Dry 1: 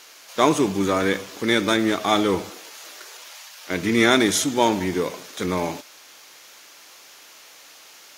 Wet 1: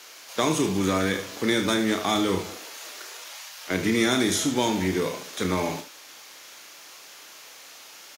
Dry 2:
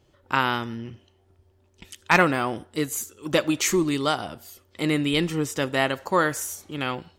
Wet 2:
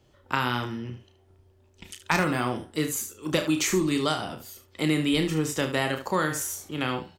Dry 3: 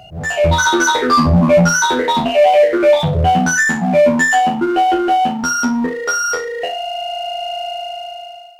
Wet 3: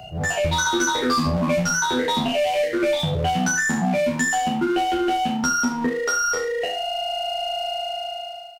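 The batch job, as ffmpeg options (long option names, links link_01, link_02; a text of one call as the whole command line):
ffmpeg -i in.wav -filter_complex "[0:a]aecho=1:1:32|74:0.422|0.266,acrossover=split=250|1700|4100[link_01][link_02][link_03][link_04];[link_01]acompressor=threshold=-25dB:ratio=4[link_05];[link_02]acompressor=threshold=-25dB:ratio=4[link_06];[link_03]acompressor=threshold=-32dB:ratio=4[link_07];[link_04]acompressor=threshold=-27dB:ratio=4[link_08];[link_05][link_06][link_07][link_08]amix=inputs=4:normalize=0" out.wav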